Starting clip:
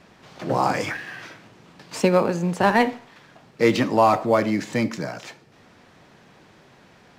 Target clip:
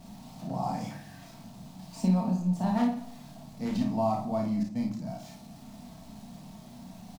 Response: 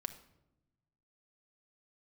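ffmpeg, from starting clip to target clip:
-filter_complex "[0:a]aeval=exprs='val(0)+0.5*0.0224*sgn(val(0))':channel_layout=same,asettb=1/sr,asplit=3[link_01][link_02][link_03];[link_01]atrim=end=4.634[link_04];[link_02]atrim=start=4.63:end=5.07,asetpts=PTS-STARTPTS,afade=type=in:duration=0.004:curve=qsin,afade=type=out:start_time=0.436:duration=0.004:curve=qsin,agate=range=-33dB:threshold=-22dB:ratio=3:detection=peak[link_05];[link_03]atrim=start=5.066[link_06];[link_04][link_05]acrossfade=duration=0.004:curve1=hsin:curve2=qsin[link_07];[link_07][link_06]acrossfade=duration=0.004:curve1=qsin:curve2=hsin,firequalizer=gain_entry='entry(240,0);entry(430,-22);entry(670,-3);entry(1500,-21);entry(4100,-9)':delay=0.05:min_phase=1,asettb=1/sr,asplit=3[link_08][link_09][link_10];[link_08]atrim=end=2.774[link_11];[link_09]atrim=start=2.77:end=3.79,asetpts=PTS-STARTPTS,afade=type=in:duration=0.004:curve=qsin,afade=type=out:start_time=1.016:duration=0.004:curve=qsin,aeval=exprs='0.126*(abs(mod(val(0)/0.126+3,4)-2)-1)':channel_layout=same[link_12];[link_10]atrim=start=3.786[link_13];[link_11][link_12]acrossfade=duration=0.004:curve1=hsin:curve2=qsin[link_14];[link_14][link_13]acrossfade=duration=0.004:curve1=qsin:curve2=hsin,aecho=1:1:33|54:0.631|0.562[link_15];[1:a]atrim=start_sample=2205,asetrate=48510,aresample=44100[link_16];[link_15][link_16]afir=irnorm=-1:irlink=0,volume=-5.5dB"

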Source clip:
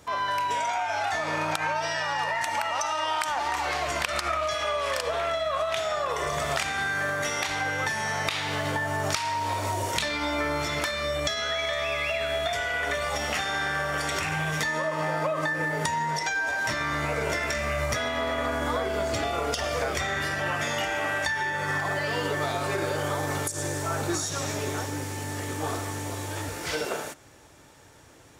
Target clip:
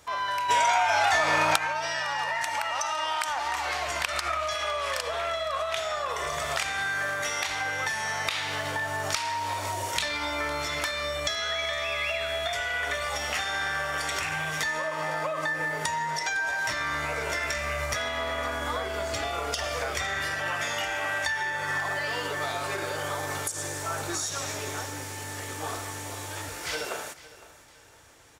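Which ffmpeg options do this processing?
ffmpeg -i in.wav -filter_complex "[0:a]equalizer=frequency=200:width_type=o:width=2.8:gain=-9,asplit=2[link_01][link_02];[link_02]aecho=0:1:508|1016|1524:0.126|0.0453|0.0163[link_03];[link_01][link_03]amix=inputs=2:normalize=0,asplit=3[link_04][link_05][link_06];[link_04]afade=type=out:start_time=0.48:duration=0.02[link_07];[link_05]acontrast=88,afade=type=in:start_time=0.48:duration=0.02,afade=type=out:start_time=1.57:duration=0.02[link_08];[link_06]afade=type=in:start_time=1.57:duration=0.02[link_09];[link_07][link_08][link_09]amix=inputs=3:normalize=0" out.wav

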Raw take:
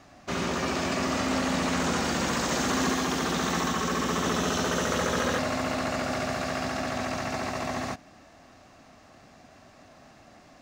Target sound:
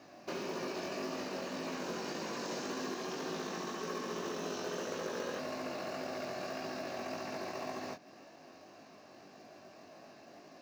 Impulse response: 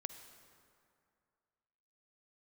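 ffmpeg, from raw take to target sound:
-af "acompressor=threshold=-38dB:ratio=3,highpass=230,equalizer=frequency=250:width_type=q:width=4:gain=-4,equalizer=frequency=370:width_type=q:width=4:gain=4,equalizer=frequency=800:width_type=q:width=4:gain=-4,equalizer=frequency=1300:width_type=q:width=4:gain=-8,equalizer=frequency=2000:width_type=q:width=4:gain=-7,equalizer=frequency=3400:width_type=q:width=4:gain=-8,lowpass=frequency=5800:width=0.5412,lowpass=frequency=5800:width=1.3066,flanger=delay=18.5:depth=3.2:speed=1.8,acrusher=bits=6:mode=log:mix=0:aa=0.000001,volume=4dB"

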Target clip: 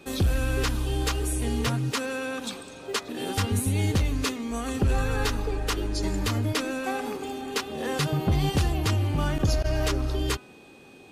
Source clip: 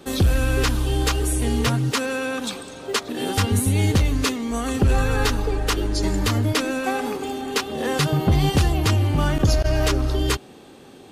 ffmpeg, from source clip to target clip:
ffmpeg -i in.wav -af "aeval=exprs='val(0)+0.00355*sin(2*PI*2500*n/s)':channel_layout=same,bandreject=frequency=250:width_type=h:width=4,bandreject=frequency=500:width_type=h:width=4,bandreject=frequency=750:width_type=h:width=4,bandreject=frequency=1000:width_type=h:width=4,bandreject=frequency=1250:width_type=h:width=4,bandreject=frequency=1500:width_type=h:width=4,bandreject=frequency=1750:width_type=h:width=4,bandreject=frequency=2000:width_type=h:width=4,volume=-5.5dB" out.wav

